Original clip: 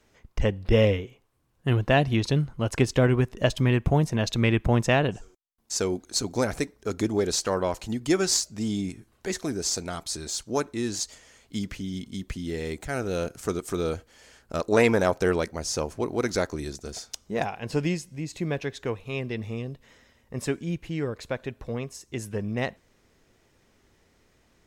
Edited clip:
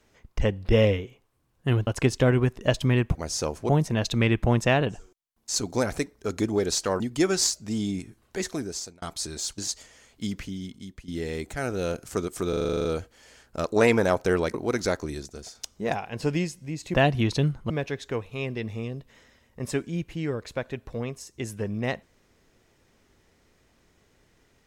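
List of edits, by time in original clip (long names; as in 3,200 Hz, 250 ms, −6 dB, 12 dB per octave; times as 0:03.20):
0:01.87–0:02.63: move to 0:18.44
0:05.78–0:06.17: remove
0:07.61–0:07.90: remove
0:09.41–0:09.92: fade out
0:10.48–0:10.90: remove
0:11.72–0:12.40: fade out, to −14 dB
0:13.81: stutter 0.04 s, 10 plays
0:15.50–0:16.04: move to 0:03.91
0:16.57–0:17.05: fade out linear, to −6.5 dB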